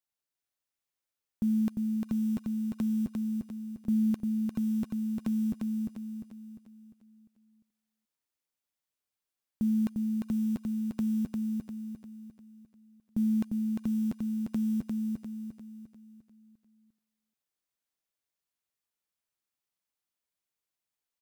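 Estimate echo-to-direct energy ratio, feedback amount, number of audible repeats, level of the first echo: −2.5 dB, 44%, 5, −3.5 dB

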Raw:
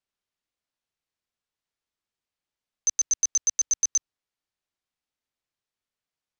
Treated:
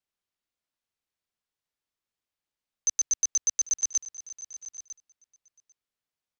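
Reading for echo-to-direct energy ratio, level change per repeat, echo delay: −15.0 dB, repeats not evenly spaced, 795 ms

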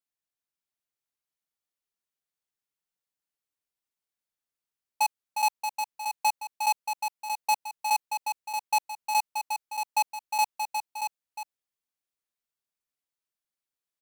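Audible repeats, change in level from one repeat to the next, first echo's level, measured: 3, repeats not evenly spaced, −6.5 dB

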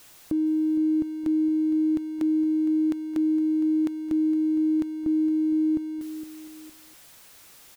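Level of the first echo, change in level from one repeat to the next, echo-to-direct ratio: −13.5 dB, −7.5 dB, −13.0 dB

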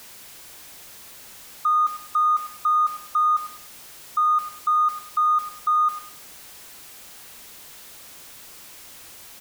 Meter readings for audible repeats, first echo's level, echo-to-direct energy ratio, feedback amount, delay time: 2, −14.0 dB, −13.5 dB, 27%, 101 ms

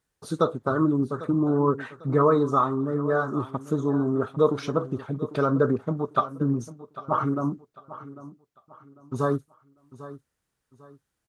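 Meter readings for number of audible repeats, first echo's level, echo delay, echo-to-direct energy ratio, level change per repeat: 2, −16.0 dB, 798 ms, −15.5 dB, −10.0 dB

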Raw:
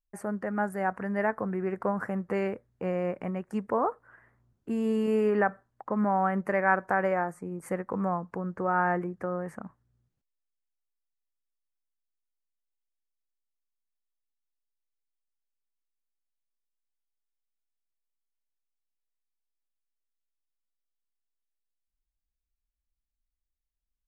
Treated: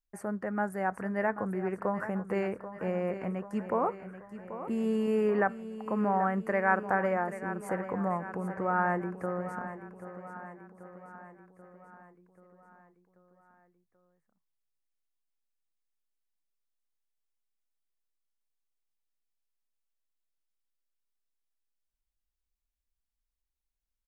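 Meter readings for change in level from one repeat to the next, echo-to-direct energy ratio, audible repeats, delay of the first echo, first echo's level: −5.0 dB, −10.5 dB, 5, 785 ms, −12.0 dB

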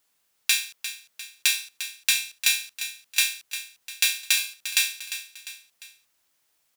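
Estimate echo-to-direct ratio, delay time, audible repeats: −10.5 dB, 350 ms, 3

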